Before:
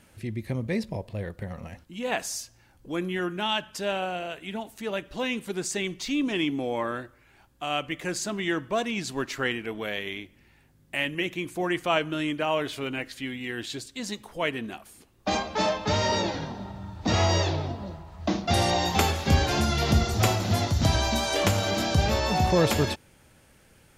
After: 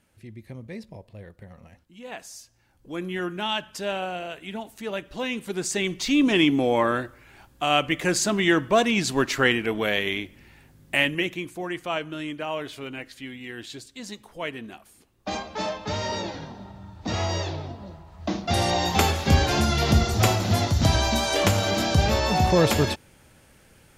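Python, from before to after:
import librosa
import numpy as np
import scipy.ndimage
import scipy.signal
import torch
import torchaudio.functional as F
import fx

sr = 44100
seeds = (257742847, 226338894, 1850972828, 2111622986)

y = fx.gain(x, sr, db=fx.line((2.32, -9.5), (3.17, 0.0), (5.31, 0.0), (6.3, 7.5), (10.95, 7.5), (11.62, -4.0), (17.79, -4.0), (19.05, 2.5)))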